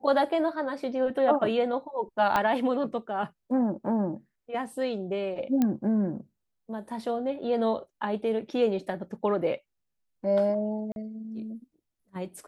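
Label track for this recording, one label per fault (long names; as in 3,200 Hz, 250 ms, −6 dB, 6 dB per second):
2.360000	2.360000	click −12 dBFS
5.620000	5.620000	click −13 dBFS
10.920000	10.960000	drop-out 41 ms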